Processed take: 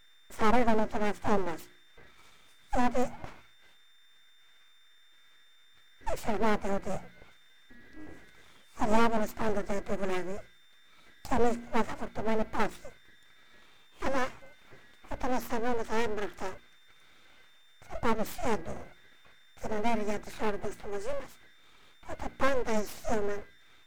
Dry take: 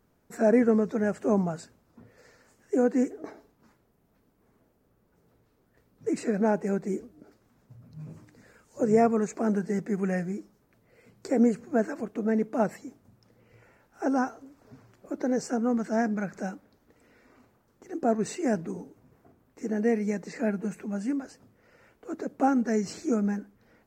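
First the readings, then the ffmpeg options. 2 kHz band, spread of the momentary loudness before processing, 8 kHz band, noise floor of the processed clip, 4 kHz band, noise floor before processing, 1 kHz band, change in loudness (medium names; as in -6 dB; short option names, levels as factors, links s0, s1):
+1.5 dB, 16 LU, -3.0 dB, -58 dBFS, no reading, -68 dBFS, +1.5 dB, -5.0 dB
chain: -af "aeval=exprs='val(0)+0.00178*sin(2*PI*1800*n/s)':c=same,aeval=exprs='abs(val(0))':c=same,bandreject=f=59.26:t=h:w=4,bandreject=f=118.52:t=h:w=4,bandreject=f=177.78:t=h:w=4,bandreject=f=237.04:t=h:w=4,bandreject=f=296.3:t=h:w=4,bandreject=f=355.56:t=h:w=4"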